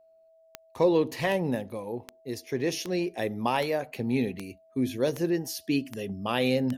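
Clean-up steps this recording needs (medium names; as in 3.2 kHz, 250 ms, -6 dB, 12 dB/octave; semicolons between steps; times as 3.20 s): de-click; band-stop 650 Hz, Q 30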